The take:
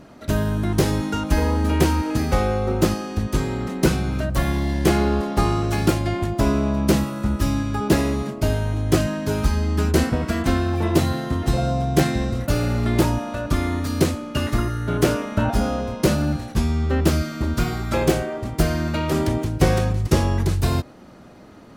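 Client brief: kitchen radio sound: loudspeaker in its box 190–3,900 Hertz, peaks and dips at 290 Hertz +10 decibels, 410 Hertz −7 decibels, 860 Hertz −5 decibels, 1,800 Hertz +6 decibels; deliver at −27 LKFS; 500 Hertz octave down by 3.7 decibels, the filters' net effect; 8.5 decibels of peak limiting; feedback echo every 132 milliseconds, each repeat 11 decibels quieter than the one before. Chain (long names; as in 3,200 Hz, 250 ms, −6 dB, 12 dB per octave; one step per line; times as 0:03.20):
parametric band 500 Hz −3 dB
brickwall limiter −11.5 dBFS
loudspeaker in its box 190–3,900 Hz, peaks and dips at 290 Hz +10 dB, 410 Hz −7 dB, 860 Hz −5 dB, 1,800 Hz +6 dB
repeating echo 132 ms, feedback 28%, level −11 dB
level −3 dB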